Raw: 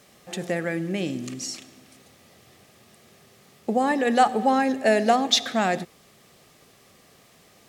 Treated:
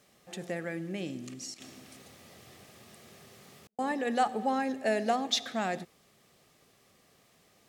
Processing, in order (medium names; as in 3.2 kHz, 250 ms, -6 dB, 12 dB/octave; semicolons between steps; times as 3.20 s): 1.54–3.79 s: compressor with a negative ratio -46 dBFS, ratio -0.5; trim -9 dB